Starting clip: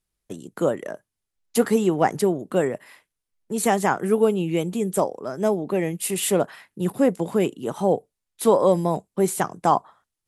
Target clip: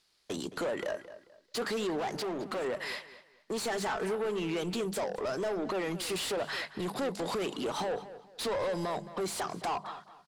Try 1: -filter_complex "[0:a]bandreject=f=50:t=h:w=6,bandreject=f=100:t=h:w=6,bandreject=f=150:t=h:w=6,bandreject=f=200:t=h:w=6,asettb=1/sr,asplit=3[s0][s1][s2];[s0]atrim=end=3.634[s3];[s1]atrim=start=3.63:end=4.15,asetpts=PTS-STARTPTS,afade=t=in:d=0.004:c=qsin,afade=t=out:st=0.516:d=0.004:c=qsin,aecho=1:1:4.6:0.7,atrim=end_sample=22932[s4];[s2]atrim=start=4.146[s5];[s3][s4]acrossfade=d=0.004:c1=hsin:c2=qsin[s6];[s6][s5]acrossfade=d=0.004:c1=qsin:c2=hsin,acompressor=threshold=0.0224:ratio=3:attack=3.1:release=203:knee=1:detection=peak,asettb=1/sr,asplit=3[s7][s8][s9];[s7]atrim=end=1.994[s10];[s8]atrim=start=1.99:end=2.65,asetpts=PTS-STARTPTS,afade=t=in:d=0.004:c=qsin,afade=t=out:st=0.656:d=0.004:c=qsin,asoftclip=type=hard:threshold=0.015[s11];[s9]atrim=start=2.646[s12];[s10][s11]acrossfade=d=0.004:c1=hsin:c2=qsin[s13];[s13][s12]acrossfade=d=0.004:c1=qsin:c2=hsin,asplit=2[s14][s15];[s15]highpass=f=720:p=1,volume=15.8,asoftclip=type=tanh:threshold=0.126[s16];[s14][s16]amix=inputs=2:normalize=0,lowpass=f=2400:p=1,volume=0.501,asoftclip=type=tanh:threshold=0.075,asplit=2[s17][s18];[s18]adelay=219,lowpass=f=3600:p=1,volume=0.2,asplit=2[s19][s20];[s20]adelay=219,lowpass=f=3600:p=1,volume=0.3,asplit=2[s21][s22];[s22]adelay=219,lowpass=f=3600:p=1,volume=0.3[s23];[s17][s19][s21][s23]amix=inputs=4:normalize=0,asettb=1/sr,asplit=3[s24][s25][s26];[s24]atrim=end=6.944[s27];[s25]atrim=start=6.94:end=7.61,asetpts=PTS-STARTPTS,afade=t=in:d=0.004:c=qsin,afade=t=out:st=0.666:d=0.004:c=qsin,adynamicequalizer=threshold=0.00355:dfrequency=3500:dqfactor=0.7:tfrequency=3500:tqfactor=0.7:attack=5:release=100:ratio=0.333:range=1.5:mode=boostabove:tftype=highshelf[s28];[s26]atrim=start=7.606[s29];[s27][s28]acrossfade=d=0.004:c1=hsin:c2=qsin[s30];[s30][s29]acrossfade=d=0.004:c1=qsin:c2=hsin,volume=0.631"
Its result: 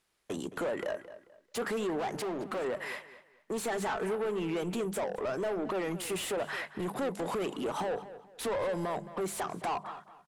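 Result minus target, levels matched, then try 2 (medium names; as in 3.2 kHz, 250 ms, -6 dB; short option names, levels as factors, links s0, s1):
4 kHz band -5.0 dB
-filter_complex "[0:a]bandreject=f=50:t=h:w=6,bandreject=f=100:t=h:w=6,bandreject=f=150:t=h:w=6,bandreject=f=200:t=h:w=6,asettb=1/sr,asplit=3[s0][s1][s2];[s0]atrim=end=3.634[s3];[s1]atrim=start=3.63:end=4.15,asetpts=PTS-STARTPTS,afade=t=in:d=0.004:c=qsin,afade=t=out:st=0.516:d=0.004:c=qsin,aecho=1:1:4.6:0.7,atrim=end_sample=22932[s4];[s2]atrim=start=4.146[s5];[s3][s4]acrossfade=d=0.004:c1=hsin:c2=qsin[s6];[s6][s5]acrossfade=d=0.004:c1=qsin:c2=hsin,acompressor=threshold=0.0224:ratio=3:attack=3.1:release=203:knee=1:detection=peak,equalizer=f=4500:t=o:w=0.86:g=13.5,asettb=1/sr,asplit=3[s7][s8][s9];[s7]atrim=end=1.994[s10];[s8]atrim=start=1.99:end=2.65,asetpts=PTS-STARTPTS,afade=t=in:d=0.004:c=qsin,afade=t=out:st=0.656:d=0.004:c=qsin,asoftclip=type=hard:threshold=0.015[s11];[s9]atrim=start=2.646[s12];[s10][s11]acrossfade=d=0.004:c1=hsin:c2=qsin[s13];[s13][s12]acrossfade=d=0.004:c1=qsin:c2=hsin,asplit=2[s14][s15];[s15]highpass=f=720:p=1,volume=15.8,asoftclip=type=tanh:threshold=0.126[s16];[s14][s16]amix=inputs=2:normalize=0,lowpass=f=2400:p=1,volume=0.501,asoftclip=type=tanh:threshold=0.075,asplit=2[s17][s18];[s18]adelay=219,lowpass=f=3600:p=1,volume=0.2,asplit=2[s19][s20];[s20]adelay=219,lowpass=f=3600:p=1,volume=0.3,asplit=2[s21][s22];[s22]adelay=219,lowpass=f=3600:p=1,volume=0.3[s23];[s17][s19][s21][s23]amix=inputs=4:normalize=0,asettb=1/sr,asplit=3[s24][s25][s26];[s24]atrim=end=6.944[s27];[s25]atrim=start=6.94:end=7.61,asetpts=PTS-STARTPTS,afade=t=in:d=0.004:c=qsin,afade=t=out:st=0.666:d=0.004:c=qsin,adynamicequalizer=threshold=0.00355:dfrequency=3500:dqfactor=0.7:tfrequency=3500:tqfactor=0.7:attack=5:release=100:ratio=0.333:range=1.5:mode=boostabove:tftype=highshelf[s28];[s26]atrim=start=7.606[s29];[s27][s28]acrossfade=d=0.004:c1=hsin:c2=qsin[s30];[s30][s29]acrossfade=d=0.004:c1=qsin:c2=hsin,volume=0.631"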